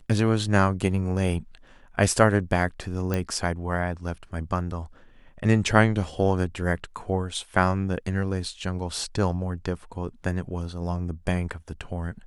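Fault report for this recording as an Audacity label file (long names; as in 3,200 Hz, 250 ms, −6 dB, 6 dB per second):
3.140000	3.140000	click −13 dBFS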